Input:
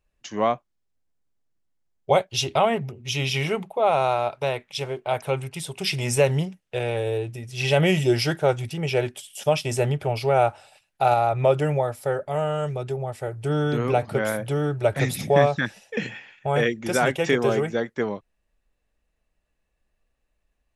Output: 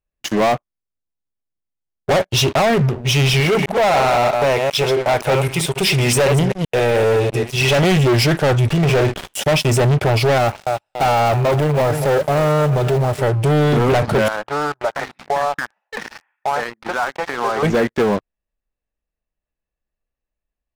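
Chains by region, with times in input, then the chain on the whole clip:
3.4–7.84 reverse delay 0.13 s, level -8 dB + low shelf 240 Hz -7 dB
8.7–9.34 CVSD 32 kbps + doubler 47 ms -10 dB + running maximum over 5 samples
10.38–13.23 block floating point 5-bit + feedback echo 0.285 s, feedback 37%, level -16.5 dB + core saturation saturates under 1300 Hz
14.28–17.63 resonant low shelf 670 Hz -14 dB, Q 1.5 + compressor, threshold -29 dBFS + Butterworth band-pass 550 Hz, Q 0.54
whole clip: high shelf 3200 Hz -7 dB; sample leveller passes 5; limiter -11.5 dBFS

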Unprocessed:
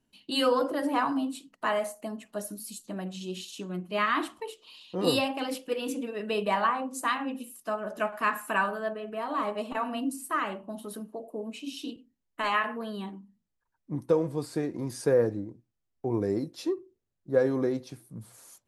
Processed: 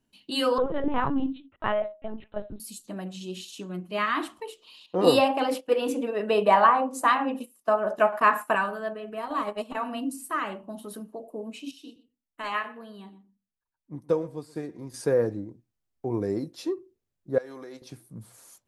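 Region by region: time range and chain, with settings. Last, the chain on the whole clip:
0.58–2.6 dynamic EQ 340 Hz, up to +4 dB, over -41 dBFS, Q 0.7 + LPC vocoder at 8 kHz pitch kept
4.86–8.55 gate -43 dBFS, range -13 dB + bell 730 Hz +9.5 dB 2.4 oct
9.17–9.72 high shelf 5700 Hz +4.5 dB + transient shaper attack +4 dB, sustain -9 dB
11.71–14.94 echo 0.122 s -15.5 dB + upward expander, over -40 dBFS
17.38–17.82 HPF 1300 Hz 6 dB/oct + compressor 12:1, threshold -37 dBFS
whole clip: dry

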